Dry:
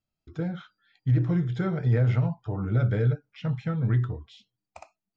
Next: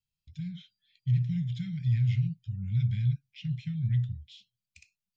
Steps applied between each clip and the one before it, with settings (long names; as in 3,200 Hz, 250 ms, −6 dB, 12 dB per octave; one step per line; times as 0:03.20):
inverse Chebyshev band-stop filter 350–1,200 Hz, stop band 50 dB
parametric band 3,200 Hz +3.5 dB 2 octaves
level −3 dB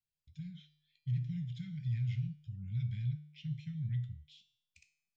tuned comb filter 150 Hz, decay 0.65 s, harmonics all, mix 70%
level +1 dB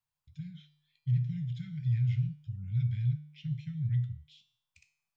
octave-band graphic EQ 125/250/1,000 Hz +7/−5/+12 dB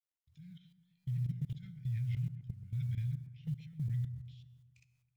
log-companded quantiser 8 bits
output level in coarse steps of 17 dB
delay with a low-pass on its return 130 ms, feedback 57%, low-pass 1,600 Hz, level −12.5 dB